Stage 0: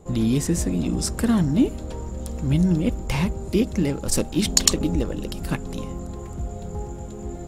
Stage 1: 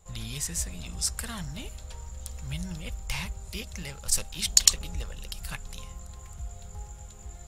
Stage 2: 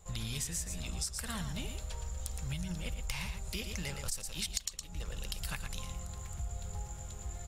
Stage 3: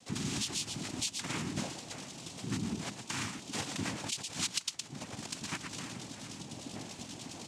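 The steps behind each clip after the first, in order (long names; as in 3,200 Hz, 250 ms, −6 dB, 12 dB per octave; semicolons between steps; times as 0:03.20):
guitar amp tone stack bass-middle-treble 10-0-10
on a send: single-tap delay 114 ms −8.5 dB; on the sum: downward compressor 20 to 1, threshold −34 dBFS, peak gain reduction 24 dB; level +1 dB
cochlear-implant simulation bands 4; level +3.5 dB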